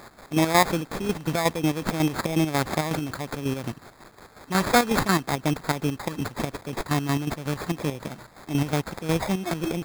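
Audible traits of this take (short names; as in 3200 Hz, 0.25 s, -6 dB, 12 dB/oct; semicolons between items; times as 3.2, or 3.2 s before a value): a quantiser's noise floor 8-bit, dither triangular; chopped level 5.5 Hz, depth 60%, duty 45%; aliases and images of a low sample rate 2900 Hz, jitter 0%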